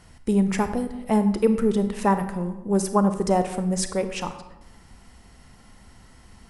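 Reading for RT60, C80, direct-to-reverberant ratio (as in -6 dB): 1.1 s, 12.5 dB, 9.0 dB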